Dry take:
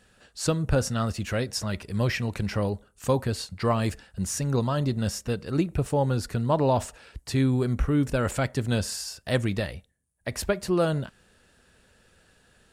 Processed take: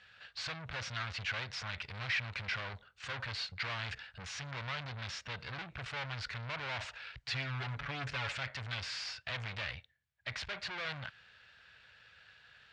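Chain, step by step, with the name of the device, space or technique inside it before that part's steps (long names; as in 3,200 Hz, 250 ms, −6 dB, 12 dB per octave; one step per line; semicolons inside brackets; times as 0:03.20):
scooped metal amplifier (tube saturation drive 39 dB, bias 0.75; loudspeaker in its box 110–4,100 Hz, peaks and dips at 120 Hz +4 dB, 190 Hz −3 dB, 290 Hz +6 dB, 1,500 Hz +4 dB, 2,200 Hz +4 dB; guitar amp tone stack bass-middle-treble 10-0-10)
0:07.23–0:08.33: comb filter 7.1 ms, depth 79%
level +11 dB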